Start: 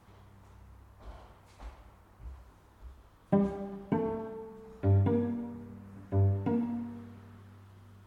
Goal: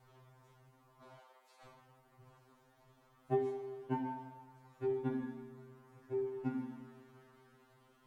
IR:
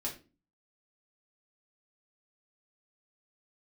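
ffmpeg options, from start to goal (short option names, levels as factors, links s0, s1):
-filter_complex "[0:a]asettb=1/sr,asplit=3[s0][s1][s2];[s0]atrim=end=1.174[s3];[s1]atrim=start=1.17:end=1.66,asetpts=PTS-STARTPTS,afade=t=in:d=0.004:c=qsin,afade=t=out:st=0.486:d=0.004:c=qsin,highpass=f=430:w=0.5412,highpass=f=430:w=1.3066[s4];[s2]atrim=start=1.656[s5];[s3][s4]acrossfade=d=0.004:c1=hsin:c2=qsin[s6];[s6][s5]acrossfade=d=0.004:c1=qsin:c2=hsin,afftfilt=real='re*2.45*eq(mod(b,6),0)':imag='im*2.45*eq(mod(b,6),0)':win_size=2048:overlap=0.75,volume=0.75"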